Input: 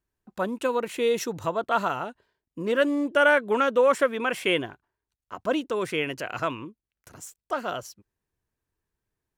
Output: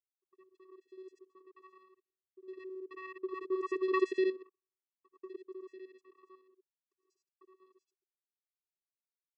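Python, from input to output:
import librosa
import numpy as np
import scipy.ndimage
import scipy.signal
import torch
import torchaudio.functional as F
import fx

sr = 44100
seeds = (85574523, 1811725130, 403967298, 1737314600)

y = fx.local_reverse(x, sr, ms=58.0)
y = fx.doppler_pass(y, sr, speed_mps=25, closest_m=2.6, pass_at_s=3.96)
y = fx.vocoder(y, sr, bands=8, carrier='square', carrier_hz=376.0)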